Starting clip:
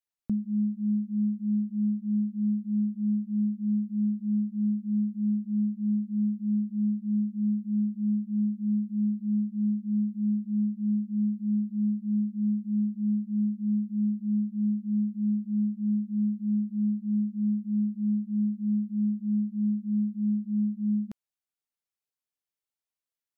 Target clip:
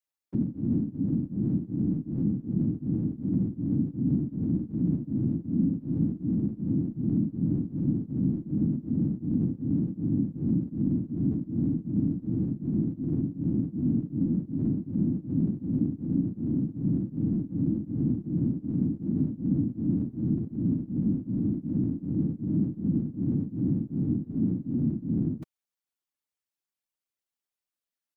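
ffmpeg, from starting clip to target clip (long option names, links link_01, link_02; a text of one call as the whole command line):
ffmpeg -i in.wav -af "aecho=1:1:3.5:0.33,atempo=0.83,afftfilt=real='hypot(re,im)*cos(2*PI*random(0))':imag='hypot(re,im)*sin(2*PI*random(1))':win_size=512:overlap=0.75,volume=5.5dB" out.wav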